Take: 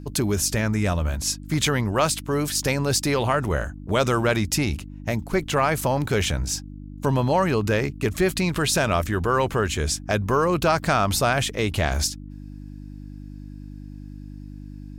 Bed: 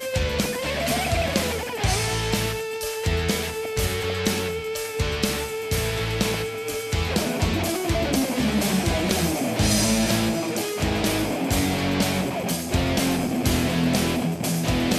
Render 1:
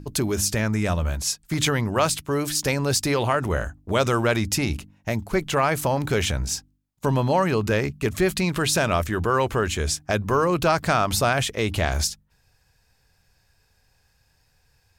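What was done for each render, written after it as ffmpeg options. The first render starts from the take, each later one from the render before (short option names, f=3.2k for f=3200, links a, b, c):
-af "bandreject=f=50:t=h:w=4,bandreject=f=100:t=h:w=4,bandreject=f=150:t=h:w=4,bandreject=f=200:t=h:w=4,bandreject=f=250:t=h:w=4,bandreject=f=300:t=h:w=4"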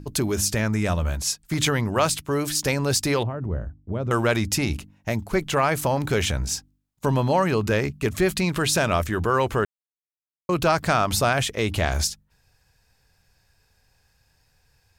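-filter_complex "[0:a]asettb=1/sr,asplit=3[a][b][c];[a]atrim=end=3.234[d];[b]atrim=start=3.23:end=4.11,asetpts=PTS-STARTPTS,afade=t=in:d=0.004:c=qsin,afade=t=out:st=0.876:d=0.004:c=qsin,bandpass=f=100:t=q:w=0.51[e];[c]atrim=start=4.106[f];[d][e]acrossfade=d=0.004:c1=hsin:c2=qsin[g];[g][f]acrossfade=d=0.004:c1=qsin:c2=hsin,asplit=3[h][i][j];[h]atrim=end=9.65,asetpts=PTS-STARTPTS,afade=t=out:st=9.646:d=0.004:c=hsin[k];[i]atrim=start=9.65:end=10.49,asetpts=PTS-STARTPTS,volume=0[l];[j]atrim=start=10.49,asetpts=PTS-STARTPTS,afade=t=in:d=0.004:c=hsin[m];[k][l][m]concat=n=3:v=0:a=1"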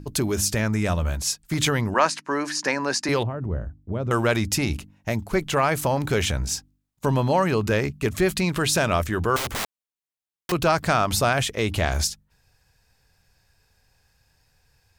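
-filter_complex "[0:a]asettb=1/sr,asplit=3[a][b][c];[a]atrim=end=1.944[d];[b]atrim=start=1.94:end=3.09,asetpts=PTS-STARTPTS,afade=t=in:d=0.004:c=qsin,afade=t=out:st=1.146:d=0.004:c=qsin,highpass=f=210:w=0.5412,highpass=f=210:w=1.3066,equalizer=f=430:t=q:w=4:g=-4,equalizer=f=970:t=q:w=4:g=7,equalizer=f=1.7k:t=q:w=4:g=9,equalizer=f=3.4k:t=q:w=4:g=-9,equalizer=f=8k:t=q:w=4:g=-8,lowpass=f=8.3k:w=0.5412,lowpass=f=8.3k:w=1.3066[e];[c]atrim=start=3.086[f];[d][e]acrossfade=d=0.004:c1=hsin:c2=qsin[g];[g][f]acrossfade=d=0.004:c1=qsin:c2=hsin,asettb=1/sr,asplit=3[h][i][j];[h]atrim=end=9.364[k];[i]atrim=start=9.36:end=10.52,asetpts=PTS-STARTPTS,afade=t=in:d=0.004:c=qsin,afade=t=out:st=1.156:d=0.004:c=qsin,aeval=exprs='(mod(13.3*val(0)+1,2)-1)/13.3':c=same[l];[j]atrim=start=10.516[m];[k][l]acrossfade=d=0.004:c1=hsin:c2=qsin[n];[n][m]acrossfade=d=0.004:c1=qsin:c2=hsin"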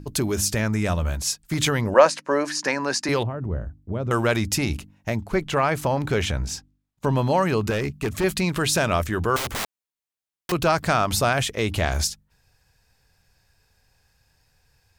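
-filter_complex "[0:a]asettb=1/sr,asplit=3[a][b][c];[a]atrim=end=1.844[d];[b]atrim=start=1.84:end=2.45,asetpts=PTS-STARTPTS,afade=t=in:d=0.004:c=qsin,afade=t=out:st=0.606:d=0.004:c=qsin,equalizer=f=540:t=o:w=0.44:g=13.5[e];[c]atrim=start=2.446[f];[d][e]acrossfade=d=0.004:c1=hsin:c2=qsin[g];[g][f]acrossfade=d=0.004:c1=qsin:c2=hsin,asettb=1/sr,asplit=3[h][i][j];[h]atrim=end=5.104[k];[i]atrim=start=5.1:end=7.17,asetpts=PTS-STARTPTS,afade=t=in:d=0.004:c=qsin,afade=t=out:st=2.066:d=0.004:c=qsin,highshelf=f=6.3k:g=-9[l];[j]atrim=start=7.166[m];[k][l]acrossfade=d=0.004:c1=hsin:c2=qsin[n];[n][m]acrossfade=d=0.004:c1=qsin:c2=hsin,asettb=1/sr,asplit=3[o][p][q];[o]atrim=end=7.704[r];[p]atrim=start=7.7:end=8.24,asetpts=PTS-STARTPTS,afade=t=in:d=0.004:c=qsin,afade=t=out:st=0.536:d=0.004:c=qsin,asoftclip=type=hard:threshold=-20dB[s];[q]atrim=start=8.236[t];[r][s]acrossfade=d=0.004:c1=hsin:c2=qsin[u];[u][t]acrossfade=d=0.004:c1=qsin:c2=hsin"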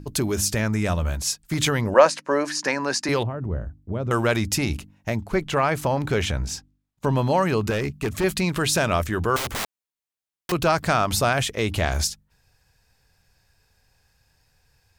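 -af anull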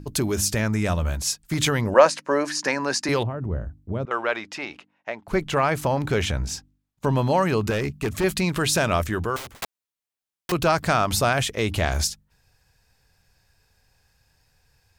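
-filter_complex "[0:a]asettb=1/sr,asplit=3[a][b][c];[a]atrim=end=4.054[d];[b]atrim=start=4.05:end=5.28,asetpts=PTS-STARTPTS,afade=t=in:d=0.004:c=qsin,afade=t=out:st=1.226:d=0.004:c=qsin,highpass=560,lowpass=2.7k[e];[c]atrim=start=5.276[f];[d][e]acrossfade=d=0.004:c1=hsin:c2=qsin[g];[g][f]acrossfade=d=0.004:c1=qsin:c2=hsin,asplit=2[h][i];[h]atrim=end=9.62,asetpts=PTS-STARTPTS,afade=t=out:st=9.11:d=0.51[j];[i]atrim=start=9.62,asetpts=PTS-STARTPTS,afade=t=in:d=0.004:c=hsin[k];[j][k]concat=n=2:v=0:a=1"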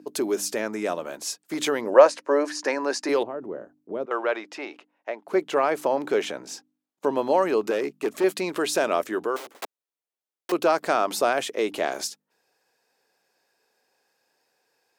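-af "highpass=f=330:w=0.5412,highpass=f=330:w=1.3066,tiltshelf=f=730:g=6"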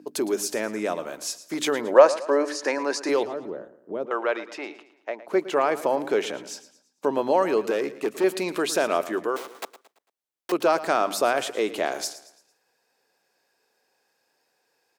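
-af "aecho=1:1:112|224|336|448:0.168|0.0705|0.0296|0.0124"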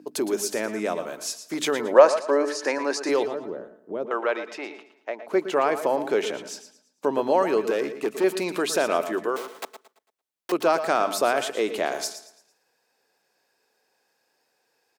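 -filter_complex "[0:a]asplit=2[a][b];[b]adelay=116.6,volume=-12dB,highshelf=f=4k:g=-2.62[c];[a][c]amix=inputs=2:normalize=0"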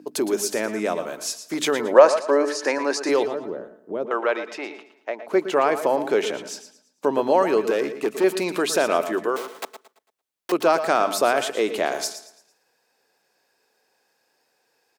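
-af "volume=2.5dB,alimiter=limit=-1dB:level=0:latency=1"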